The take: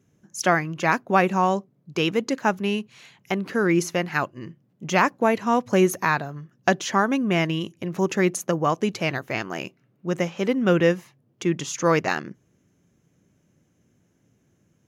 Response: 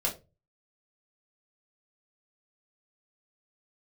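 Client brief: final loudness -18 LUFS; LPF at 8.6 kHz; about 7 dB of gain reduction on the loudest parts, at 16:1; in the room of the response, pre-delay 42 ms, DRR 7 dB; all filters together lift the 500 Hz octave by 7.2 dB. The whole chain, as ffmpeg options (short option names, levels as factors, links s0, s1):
-filter_complex "[0:a]lowpass=8600,equalizer=f=500:t=o:g=9,acompressor=threshold=0.178:ratio=16,asplit=2[s0][s1];[1:a]atrim=start_sample=2205,adelay=42[s2];[s1][s2]afir=irnorm=-1:irlink=0,volume=0.211[s3];[s0][s3]amix=inputs=2:normalize=0,volume=1.58"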